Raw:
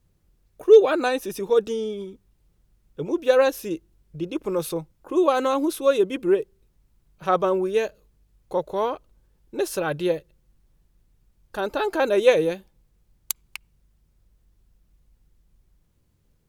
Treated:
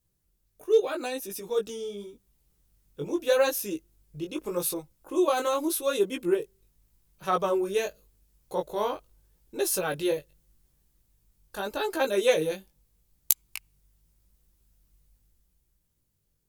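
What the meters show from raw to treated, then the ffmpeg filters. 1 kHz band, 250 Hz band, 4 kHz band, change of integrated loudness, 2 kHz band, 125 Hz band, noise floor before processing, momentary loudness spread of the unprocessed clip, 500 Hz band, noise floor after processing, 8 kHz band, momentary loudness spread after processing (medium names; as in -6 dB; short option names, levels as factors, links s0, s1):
-5.0 dB, -5.5 dB, -1.0 dB, -5.5 dB, -4.5 dB, -6.0 dB, -66 dBFS, 16 LU, -6.5 dB, -74 dBFS, +4.5 dB, 15 LU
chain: -af "flanger=delay=15:depth=5.9:speed=0.83,dynaudnorm=f=150:g=17:m=2.24,crystalizer=i=2.5:c=0,volume=0.376"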